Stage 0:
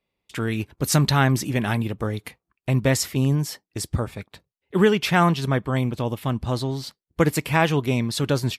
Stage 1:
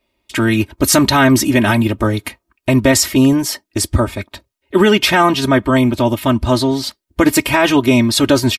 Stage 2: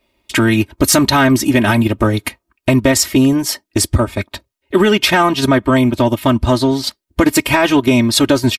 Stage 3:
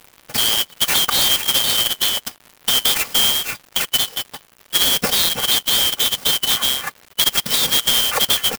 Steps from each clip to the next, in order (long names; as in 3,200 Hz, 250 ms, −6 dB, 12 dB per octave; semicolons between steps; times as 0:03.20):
comb filter 3.2 ms, depth 86%; boost into a limiter +11 dB; level −1 dB
transient designer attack +1 dB, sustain −6 dB; downward compressor 2 to 1, threshold −16 dBFS, peak gain reduction 6 dB; soft clipping −5 dBFS, distortion −26 dB; level +5 dB
band-splitting scrambler in four parts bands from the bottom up 3412; surface crackle 240 per second −25 dBFS; converter with an unsteady clock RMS 0.04 ms; level −5 dB